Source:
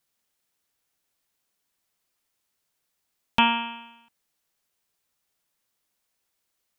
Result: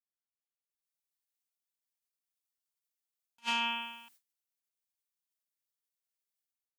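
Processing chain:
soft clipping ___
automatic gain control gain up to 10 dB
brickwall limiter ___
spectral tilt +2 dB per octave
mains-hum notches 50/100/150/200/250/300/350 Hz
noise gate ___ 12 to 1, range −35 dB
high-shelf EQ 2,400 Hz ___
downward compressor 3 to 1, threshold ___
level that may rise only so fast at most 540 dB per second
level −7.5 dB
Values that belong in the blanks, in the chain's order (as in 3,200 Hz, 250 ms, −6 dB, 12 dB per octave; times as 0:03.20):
−21 dBFS, −15 dBFS, −56 dBFS, +3 dB, −21 dBFS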